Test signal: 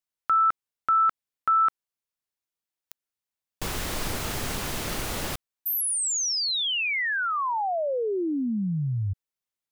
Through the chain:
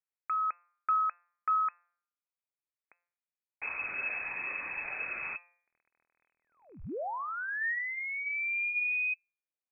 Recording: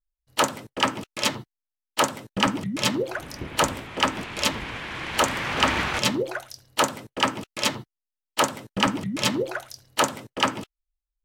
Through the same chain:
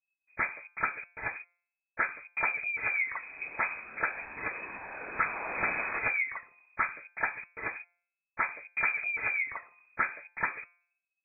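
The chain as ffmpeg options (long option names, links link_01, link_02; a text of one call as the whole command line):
ffmpeg -i in.wav -af "bandreject=frequency=172.8:width_type=h:width=4,bandreject=frequency=345.6:width_type=h:width=4,bandreject=frequency=518.4:width_type=h:width=4,bandreject=frequency=691.2:width_type=h:width=4,bandreject=frequency=864:width_type=h:width=4,bandreject=frequency=1036.8:width_type=h:width=4,bandreject=frequency=1209.6:width_type=h:width=4,bandreject=frequency=1382.4:width_type=h:width=4,bandreject=frequency=1555.2:width_type=h:width=4,bandreject=frequency=1728:width_type=h:width=4,bandreject=frequency=1900.8:width_type=h:width=4,bandreject=frequency=2073.6:width_type=h:width=4,aphaser=in_gain=1:out_gain=1:delay=1.4:decay=0.33:speed=0.33:type=triangular,lowpass=frequency=2200:width_type=q:width=0.5098,lowpass=frequency=2200:width_type=q:width=0.6013,lowpass=frequency=2200:width_type=q:width=0.9,lowpass=frequency=2200:width_type=q:width=2.563,afreqshift=-2600,volume=-7.5dB" out.wav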